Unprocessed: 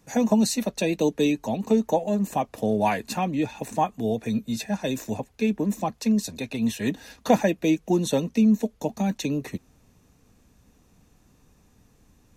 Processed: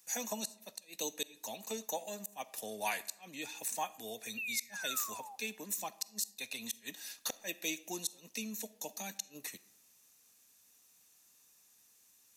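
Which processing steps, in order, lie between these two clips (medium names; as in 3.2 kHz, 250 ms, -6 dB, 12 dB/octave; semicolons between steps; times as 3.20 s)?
painted sound fall, 4.37–5.36 s, 760–2800 Hz -35 dBFS; differentiator; inverted gate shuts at -26 dBFS, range -32 dB; on a send: reverberation RT60 0.80 s, pre-delay 5 ms, DRR 17 dB; on the sum: trim +4.5 dB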